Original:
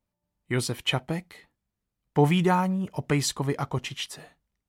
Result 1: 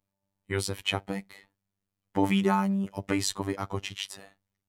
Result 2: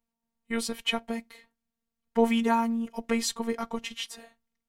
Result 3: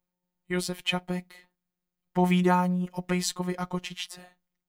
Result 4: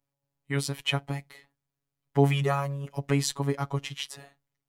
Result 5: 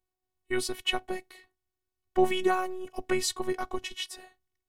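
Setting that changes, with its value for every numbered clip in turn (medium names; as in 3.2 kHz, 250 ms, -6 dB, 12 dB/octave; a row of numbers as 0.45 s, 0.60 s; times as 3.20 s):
robot voice, frequency: 98 Hz, 230 Hz, 180 Hz, 140 Hz, 370 Hz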